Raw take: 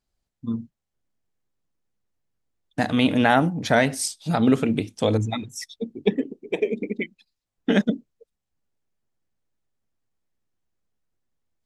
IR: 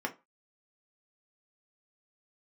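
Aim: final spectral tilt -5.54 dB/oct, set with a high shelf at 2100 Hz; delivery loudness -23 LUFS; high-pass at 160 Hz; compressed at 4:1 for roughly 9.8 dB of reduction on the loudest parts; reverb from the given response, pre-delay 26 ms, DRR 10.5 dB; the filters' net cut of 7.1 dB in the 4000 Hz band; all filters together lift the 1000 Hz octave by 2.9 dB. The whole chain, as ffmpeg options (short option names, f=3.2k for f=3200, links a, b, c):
-filter_complex "[0:a]highpass=160,equalizer=f=1k:t=o:g=5.5,highshelf=f=2.1k:g=-5,equalizer=f=4k:t=o:g=-5,acompressor=threshold=-24dB:ratio=4,asplit=2[a][b];[1:a]atrim=start_sample=2205,adelay=26[c];[b][c]afir=irnorm=-1:irlink=0,volume=-15.5dB[d];[a][d]amix=inputs=2:normalize=0,volume=7.5dB"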